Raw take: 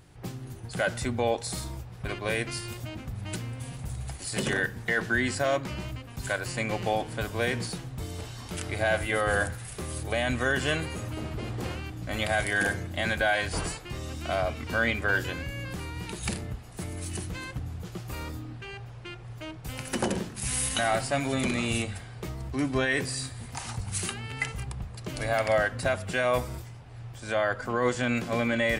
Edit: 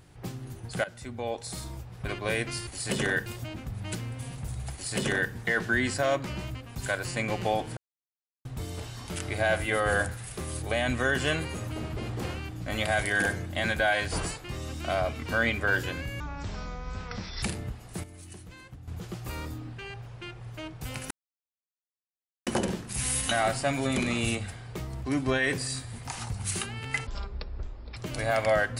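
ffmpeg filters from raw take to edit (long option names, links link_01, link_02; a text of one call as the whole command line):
ffmpeg -i in.wav -filter_complex "[0:a]asplit=13[link_01][link_02][link_03][link_04][link_05][link_06][link_07][link_08][link_09][link_10][link_11][link_12][link_13];[link_01]atrim=end=0.84,asetpts=PTS-STARTPTS,afade=type=out:start_time=0.836:duration=0.004:curve=hsin:silence=0.158489[link_14];[link_02]atrim=start=0.84:end=2.672,asetpts=PTS-STARTPTS,afade=type=in:duration=1.17:silence=0.158489[link_15];[link_03]atrim=start=4.138:end=4.732[link_16];[link_04]atrim=start=2.668:end=7.18,asetpts=PTS-STARTPTS,afade=type=out:start_time=4.508:duration=0.004:curve=hsin[link_17];[link_05]atrim=start=7.18:end=7.86,asetpts=PTS-STARTPTS,volume=0[link_18];[link_06]atrim=start=7.86:end=15.614,asetpts=PTS-STARTPTS,afade=type=in:duration=0.004:curve=hsin[link_19];[link_07]atrim=start=15.61:end=16.26,asetpts=PTS-STARTPTS,asetrate=23373,aresample=44100[link_20];[link_08]atrim=start=16.256:end=16.872[link_21];[link_09]atrim=start=16.868:end=17.712,asetpts=PTS-STARTPTS,volume=-11dB[link_22];[link_10]atrim=start=17.708:end=19.94,asetpts=PTS-STARTPTS,afade=type=out:start_time=2.228:duration=0.004:curve=hsin,apad=pad_dur=1.36[link_23];[link_11]atrim=start=19.94:end=24.544,asetpts=PTS-STARTPTS,afade=type=in:duration=0.004:curve=hsin[link_24];[link_12]atrim=start=24.54:end=24.99,asetpts=PTS-STARTPTS,asetrate=22050,aresample=44100[link_25];[link_13]atrim=start=24.986[link_26];[link_14][link_15]concat=n=2:v=0:a=1[link_27];[link_27][link_16]acrossfade=duration=0.004:curve1=hsin:curve2=hsin[link_28];[link_17][link_18][link_19]concat=n=3:v=0:a=1[link_29];[link_28][link_29]acrossfade=duration=0.004:curve1=hsin:curve2=hsin[link_30];[link_30][link_20]acrossfade=duration=0.004:curve1=hsin:curve2=hsin[link_31];[link_31][link_21]acrossfade=duration=0.004:curve1=hsin:curve2=hsin[link_32];[link_32][link_22]acrossfade=duration=0.004:curve1=hsin:curve2=hsin[link_33];[link_23][link_24]concat=n=2:v=0:a=1[link_34];[link_33][link_34]acrossfade=duration=0.004:curve1=hsin:curve2=hsin[link_35];[link_35][link_25]acrossfade=duration=0.004:curve1=hsin:curve2=hsin[link_36];[link_36][link_26]acrossfade=duration=0.004:curve1=hsin:curve2=hsin" out.wav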